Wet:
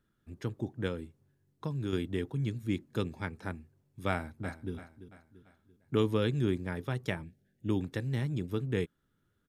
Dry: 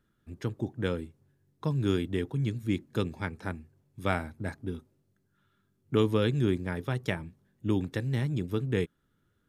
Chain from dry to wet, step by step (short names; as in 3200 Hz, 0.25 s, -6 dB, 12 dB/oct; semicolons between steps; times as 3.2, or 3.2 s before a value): 0.87–1.93 compressor 3:1, threshold -29 dBFS, peak gain reduction 6.5 dB; 4.09–4.74 echo throw 0.34 s, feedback 45%, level -13 dB; 7.24–7.69 Chebyshev band-stop 710–1600 Hz, order 2; gain -3 dB